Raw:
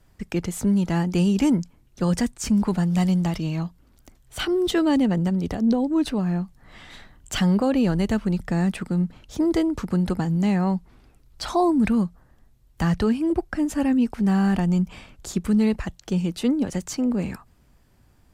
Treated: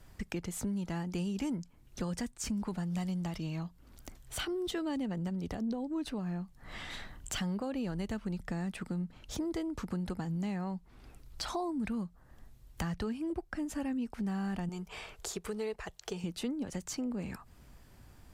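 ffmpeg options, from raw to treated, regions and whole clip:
-filter_complex "[0:a]asettb=1/sr,asplit=3[a][b][c];[a]atrim=end=14.694[d];[b]atrim=start=14.69:end=16.24,asetpts=PTS-STARTPTS,afade=t=in:d=0.004:c=qsin,afade=t=out:st=1.546:d=0.004:c=qsin,lowshelf=f=340:t=q:w=3:g=-8,bandreject=f=540:w=5.5[e];[c]atrim=start=16.236[f];[d][e]acrossfade=d=0.004:c1=hsin:c2=qsin[g];[g][f]acrossfade=d=0.004:c1=qsin:c2=hsin,lowshelf=f=390:g=-4.5,acompressor=threshold=-43dB:ratio=3,lowshelf=f=160:g=4,volume=3dB"

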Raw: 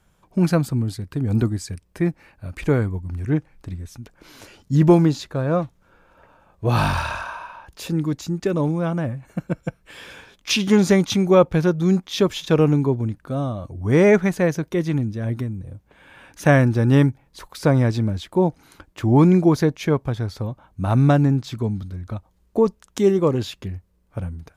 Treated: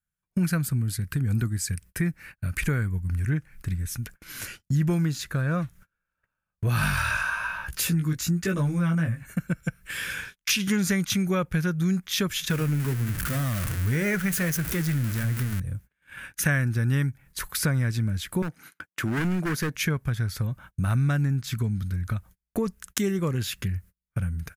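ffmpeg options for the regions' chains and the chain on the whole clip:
-filter_complex "[0:a]asettb=1/sr,asplit=3[a][b][c];[a]atrim=end=6.814[d];[b]atrim=start=6.81:end=9.23,asetpts=PTS-STARTPTS,afade=t=in:d=0.004:c=qsin,afade=t=out:st=2.416:d=0.004:c=qsin,acontrast=53,flanger=delay=15:depth=3.9:speed=1.1[e];[c]atrim=start=9.226[f];[d][e]acrossfade=d=0.004:c1=hsin:c2=qsin[g];[g][f]acrossfade=d=0.004:c1=qsin:c2=hsin,asettb=1/sr,asplit=3[h][i][j];[h]atrim=end=12.504[k];[i]atrim=start=12.5:end=15.6,asetpts=PTS-STARTPTS,afade=t=in:d=0.004:c=qsin,afade=t=out:st=3.096:d=0.004:c=qsin,aeval=exprs='val(0)+0.5*0.0668*sgn(val(0))':c=same,flanger=delay=0.7:depth=9.5:regen=-69:speed=1.4:shape=triangular[l];[j]atrim=start=15.596[m];[k][l]acrossfade=d=0.004:c1=hsin:c2=qsin[n];[n][m]acrossfade=d=0.004:c1=qsin:c2=hsin,asettb=1/sr,asplit=3[o][p][q];[o]atrim=end=18.424[r];[p]atrim=start=18.42:end=19.75,asetpts=PTS-STARTPTS,afade=t=in:d=0.004:c=qsin,afade=t=out:st=1.326:d=0.004:c=qsin,highpass=200,highshelf=f=3.4k:g=-5.5,asoftclip=type=hard:threshold=-18.5dB[s];[q]atrim=start=19.746[t];[r][s]acrossfade=d=0.004:c1=hsin:c2=qsin[u];[u][t]acrossfade=d=0.004:c1=qsin:c2=hsin,agate=range=-35dB:threshold=-46dB:ratio=16:detection=peak,firequalizer=gain_entry='entry(170,0);entry(280,-9);entry(860,-12);entry(1500,5);entry(3600,-2);entry(11000,11)':delay=0.05:min_phase=1,acompressor=threshold=-32dB:ratio=3,volume=6.5dB"

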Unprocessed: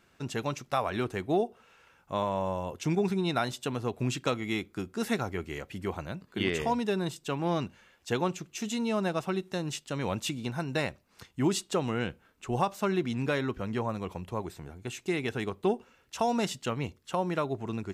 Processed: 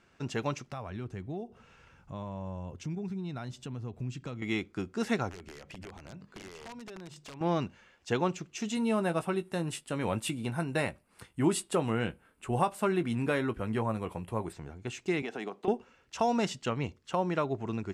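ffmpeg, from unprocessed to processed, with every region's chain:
-filter_complex "[0:a]asettb=1/sr,asplit=3[a][b][c];[a]atrim=end=0.724[d];[b]atrim=start=0.72:end=4.42,asetpts=PTS-STARTPTS,afade=t=in:d=0.004:c=qsin,afade=t=out:st=3.696:d=0.004:c=qsin,bass=f=250:g=13,treble=f=4k:g=2,acompressor=threshold=-47dB:ratio=2:attack=3.2:release=140:knee=1:detection=peak[e];[c]atrim=start=4.416[f];[d][e]acrossfade=d=0.004:c1=hsin:c2=qsin[g];[g][f]acrossfade=d=0.004:c1=qsin:c2=hsin,asettb=1/sr,asplit=3[h][i][j];[h]atrim=end=5.314[k];[i]atrim=start=5.31:end=7.41,asetpts=PTS-STARTPTS,afade=t=in:d=0.004:c=qsin,afade=t=out:st=2.096:d=0.004:c=qsin,bandreject=f=50:t=h:w=6,bandreject=f=100:t=h:w=6,bandreject=f=150:t=h:w=6,bandreject=f=200:t=h:w=6,bandreject=f=250:t=h:w=6,acompressor=threshold=-41dB:ratio=12:attack=3.2:release=140:knee=1:detection=peak,aeval=exprs='(mod(75*val(0)+1,2)-1)/75':c=same[l];[j]atrim=start=7.406[m];[k][l]acrossfade=d=0.004:c1=hsin:c2=qsin[n];[n][m]acrossfade=d=0.004:c1=qsin:c2=hsin,asettb=1/sr,asplit=3[o][p][q];[o]atrim=end=8.754[r];[p]atrim=start=8.75:end=14.53,asetpts=PTS-STARTPTS,afade=t=in:d=0.004:c=qsin,afade=t=out:st=5.776:d=0.004:c=qsin,highshelf=f=7.8k:t=q:w=3:g=9,asplit=2[s][t];[t]adelay=18,volume=-11dB[u];[s][u]amix=inputs=2:normalize=0,atrim=end_sample=254898[v];[q]atrim=start=14.526[w];[r][v]acrossfade=d=0.004:c1=hsin:c2=qsin[x];[x][w]acrossfade=d=0.004:c1=qsin:c2=hsin,asettb=1/sr,asplit=3[y][z][aa];[y]atrim=end=15.224[ab];[z]atrim=start=15.22:end=15.68,asetpts=PTS-STARTPTS,afade=t=in:d=0.004:c=qsin,afade=t=out:st=0.456:d=0.004:c=qsin,highpass=f=200:w=0.5412,highpass=f=200:w=1.3066,equalizer=f=730:t=o:w=0.4:g=8,acompressor=threshold=-33dB:ratio=4:attack=3.2:release=140:knee=1:detection=peak[ac];[aa]atrim=start=15.676[ad];[ab][ac]acrossfade=d=0.004:c1=hsin:c2=qsin[ae];[ae][ad]acrossfade=d=0.004:c1=qsin:c2=hsin,lowpass=7k,equalizer=f=3.8k:w=3.5:g=-3.5"

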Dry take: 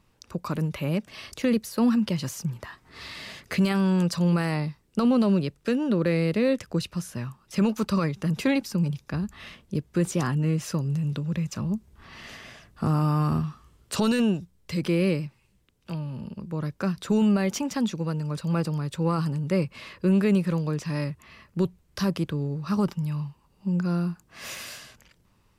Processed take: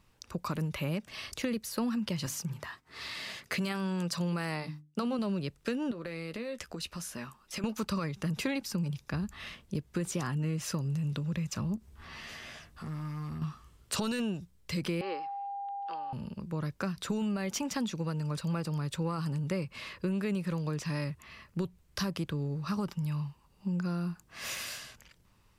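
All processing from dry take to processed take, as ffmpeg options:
-filter_complex "[0:a]asettb=1/sr,asplit=3[a][b][c];[a]atrim=end=2.264[d];[b]atrim=start=2.26:end=5.19,asetpts=PTS-STARTPTS,afade=t=in:d=0.004:c=qsin,afade=t=out:st=2.926:d=0.004:c=qsin,agate=range=-33dB:threshold=-53dB:ratio=3:release=100:detection=peak,highpass=f=130:p=1,bandreject=f=50:t=h:w=6,bandreject=f=100:t=h:w=6,bandreject=f=150:t=h:w=6,bandreject=f=200:t=h:w=6,bandreject=f=250:t=h:w=6,bandreject=f=300:t=h:w=6[e];[c]atrim=start=5.186[f];[d][e]acrossfade=d=0.004:c1=hsin:c2=qsin[g];[g][f]acrossfade=d=0.004:c1=qsin:c2=hsin,asettb=1/sr,asplit=3[h][i][j];[h]atrim=end=5.914[k];[i]atrim=start=5.91:end=7.64,asetpts=PTS-STARTPTS,afade=t=in:d=0.004:c=qsin,afade=t=out:st=1.726:d=0.004:c=qsin,equalizer=f=120:t=o:w=0.88:g=-13,acompressor=threshold=-31dB:ratio=12:attack=3.2:release=140:knee=1:detection=peak,asplit=2[l][m];[m]adelay=13,volume=-11dB[n];[l][n]amix=inputs=2:normalize=0,atrim=end_sample=76293[o];[j]atrim=start=7.636[p];[k][o]acrossfade=d=0.004:c1=hsin:c2=qsin[q];[q][p]acrossfade=d=0.004:c1=qsin:c2=hsin,asettb=1/sr,asplit=3[r][s][t];[r]atrim=end=11.764[u];[s]atrim=start=11.76:end=13.42,asetpts=PTS-STARTPTS,afade=t=in:d=0.004:c=qsin,afade=t=out:st=1.656:d=0.004:c=qsin,volume=19.5dB,asoftclip=hard,volume=-19.5dB,acompressor=threshold=-41dB:ratio=3:attack=3.2:release=140:knee=1:detection=peak,asplit=2[v][w];[w]adelay=13,volume=-6dB[x];[v][x]amix=inputs=2:normalize=0,atrim=end_sample=73206[y];[t]atrim=start=13.416[z];[u][y]acrossfade=d=0.004:c1=hsin:c2=qsin[aa];[aa][z]acrossfade=d=0.004:c1=qsin:c2=hsin,asettb=1/sr,asplit=3[ab][ac][ad];[ab]atrim=end=15.014[ae];[ac]atrim=start=15.01:end=16.13,asetpts=PTS-STARTPTS,afade=t=in:d=0.004:c=qsin,afade=t=out:st=1.116:d=0.004:c=qsin,aeval=exprs='val(0)+0.0224*sin(2*PI*800*n/s)':c=same,highpass=f=390:w=0.5412,highpass=f=390:w=1.3066,equalizer=f=580:t=q:w=4:g=-6,equalizer=f=1.1k:t=q:w=4:g=6,equalizer=f=2.4k:t=q:w=4:g=-9,equalizer=f=3.7k:t=q:w=4:g=-5,lowpass=f=4.1k:w=0.5412,lowpass=f=4.1k:w=1.3066[af];[ad]atrim=start=16.126[ag];[ae][af]acrossfade=d=0.004:c1=hsin:c2=qsin[ah];[ah][ag]acrossfade=d=0.004:c1=qsin:c2=hsin,equalizer=f=290:t=o:w=3:g=-4,acompressor=threshold=-29dB:ratio=6"

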